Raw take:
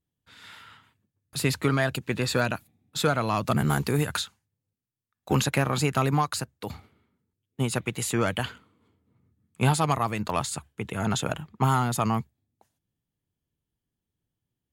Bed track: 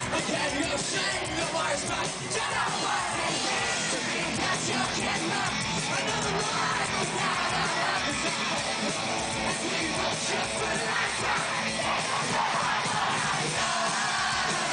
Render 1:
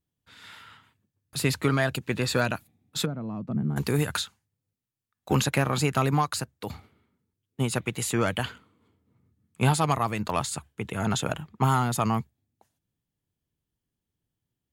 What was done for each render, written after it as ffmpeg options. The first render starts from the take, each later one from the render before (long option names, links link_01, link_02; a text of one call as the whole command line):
ffmpeg -i in.wav -filter_complex "[0:a]asplit=3[link_01][link_02][link_03];[link_01]afade=type=out:start_time=3.04:duration=0.02[link_04];[link_02]bandpass=frequency=200:width_type=q:width=1.7,afade=type=in:start_time=3.04:duration=0.02,afade=type=out:start_time=3.76:duration=0.02[link_05];[link_03]afade=type=in:start_time=3.76:duration=0.02[link_06];[link_04][link_05][link_06]amix=inputs=3:normalize=0" out.wav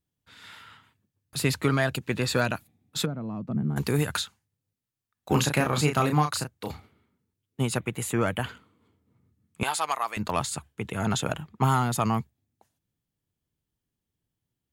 ffmpeg -i in.wav -filter_complex "[0:a]asettb=1/sr,asplit=3[link_01][link_02][link_03];[link_01]atrim=end=5.314[link_04];[link_02]atrim=start=5.31:end=6.72,asetpts=PTS-STARTPTS,afade=type=in:duration=0.004:curve=qsin,afade=type=out:start_time=1.406:duration=0.004:curve=qsin,asplit=2[link_05][link_06];[link_06]adelay=33,volume=-6dB[link_07];[link_05][link_07]amix=inputs=2:normalize=0,atrim=end_sample=62181[link_08];[link_03]atrim=start=6.716[link_09];[link_04][link_08]acrossfade=duration=0.004:curve1=hsin:curve2=qsin[link_10];[link_10][link_09]acrossfade=duration=0.004:curve1=qsin:curve2=hsin,asettb=1/sr,asplit=3[link_11][link_12][link_13];[link_11]atrim=end=7.774[link_14];[link_12]atrim=start=7.77:end=8.49,asetpts=PTS-STARTPTS,afade=type=in:duration=0.004:curve=qsin,afade=type=out:start_time=0.716:duration=0.004:curve=qsin,equalizer=frequency=4700:width_type=o:width=1.1:gain=-9.5[link_15];[link_13]atrim=start=8.486[link_16];[link_14][link_15]acrossfade=duration=0.004:curve1=hsin:curve2=qsin[link_17];[link_17][link_16]acrossfade=duration=0.004:curve1=qsin:curve2=hsin,asettb=1/sr,asplit=3[link_18][link_19][link_20];[link_18]atrim=end=9.634[link_21];[link_19]atrim=start=9.63:end=10.17,asetpts=PTS-STARTPTS,afade=type=in:duration=0.004:curve=qsin,afade=type=out:start_time=0.536:duration=0.004:curve=qsin,highpass=780[link_22];[link_20]atrim=start=10.166[link_23];[link_21][link_22]acrossfade=duration=0.004:curve1=hsin:curve2=qsin[link_24];[link_24][link_23]acrossfade=duration=0.004:curve1=qsin:curve2=hsin" out.wav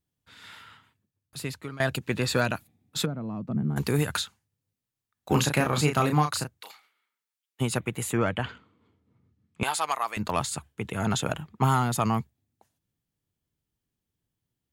ffmpeg -i in.wav -filter_complex "[0:a]asplit=3[link_01][link_02][link_03];[link_01]afade=type=out:start_time=6.6:duration=0.02[link_04];[link_02]highpass=1400,afade=type=in:start_time=6.6:duration=0.02,afade=type=out:start_time=7.6:duration=0.02[link_05];[link_03]afade=type=in:start_time=7.6:duration=0.02[link_06];[link_04][link_05][link_06]amix=inputs=3:normalize=0,asettb=1/sr,asplit=3[link_07][link_08][link_09];[link_07]atrim=end=8.174[link_10];[link_08]atrim=start=8.17:end=9.63,asetpts=PTS-STARTPTS,afade=type=in:duration=0.004:curve=qsin,afade=type=out:start_time=1.456:duration=0.004:curve=qsin,lowpass=4900[link_11];[link_09]atrim=start=9.626[link_12];[link_10][link_11]acrossfade=duration=0.004:curve1=hsin:curve2=qsin[link_13];[link_13][link_12]acrossfade=duration=0.004:curve1=qsin:curve2=hsin,asplit=2[link_14][link_15];[link_14]atrim=end=1.8,asetpts=PTS-STARTPTS,afade=type=out:start_time=0.6:duration=1.2:silence=0.112202[link_16];[link_15]atrim=start=1.8,asetpts=PTS-STARTPTS,afade=type=in:duration=0.004:curve=hsin:silence=0.112202[link_17];[link_16][link_17]concat=n=2:v=0:a=1" out.wav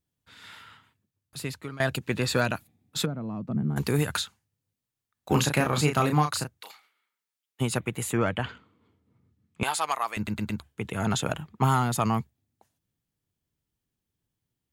ffmpeg -i in.wav -filter_complex "[0:a]asplit=5[link_01][link_02][link_03][link_04][link_05];[link_01]atrim=end=10.272[link_06];[link_02]atrim=start=10.158:end=10.272[link_07];[link_03]atrim=start=10.158:end=10.272[link_08];[link_04]atrim=start=10.158:end=10.272[link_09];[link_05]atrim=start=10.598[link_10];[link_06][link_07]acrossfade=duration=0.004:curve1=hsin:curve2=hsin[link_11];[link_11][link_08]acrossfade=duration=0.004:curve1=hsin:curve2=hsin[link_12];[link_12][link_09]acrossfade=duration=0.004:curve1=hsin:curve2=hsin[link_13];[link_13][link_10]acrossfade=duration=0.004:curve1=hsin:curve2=hsin" out.wav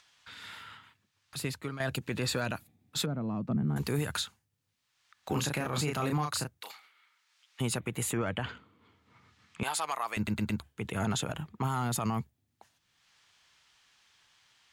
ffmpeg -i in.wav -filter_complex "[0:a]acrossover=split=880|6400[link_01][link_02][link_03];[link_02]acompressor=mode=upward:threshold=-43dB:ratio=2.5[link_04];[link_01][link_04][link_03]amix=inputs=3:normalize=0,alimiter=limit=-22dB:level=0:latency=1:release=80" out.wav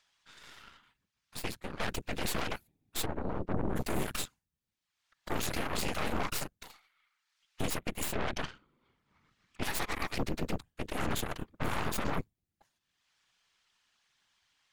ffmpeg -i in.wav -af "afftfilt=real='hypot(re,im)*cos(2*PI*random(0))':imag='hypot(re,im)*sin(2*PI*random(1))':win_size=512:overlap=0.75,aeval=exprs='0.075*(cos(1*acos(clip(val(0)/0.075,-1,1)))-cos(1*PI/2))+0.00668*(cos(3*acos(clip(val(0)/0.075,-1,1)))-cos(3*PI/2))+0.0266*(cos(8*acos(clip(val(0)/0.075,-1,1)))-cos(8*PI/2))':channel_layout=same" out.wav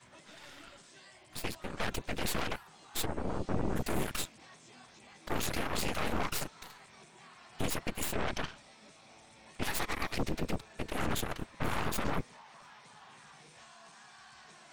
ffmpeg -i in.wav -i bed.wav -filter_complex "[1:a]volume=-28dB[link_01];[0:a][link_01]amix=inputs=2:normalize=0" out.wav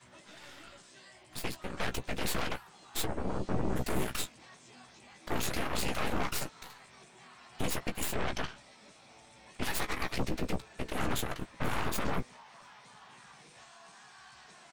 ffmpeg -i in.wav -filter_complex "[0:a]asplit=2[link_01][link_02];[link_02]adelay=16,volume=-8.5dB[link_03];[link_01][link_03]amix=inputs=2:normalize=0" out.wav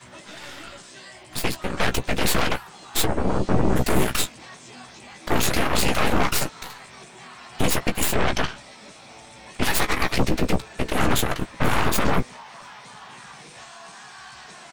ffmpeg -i in.wav -af "volume=12dB" out.wav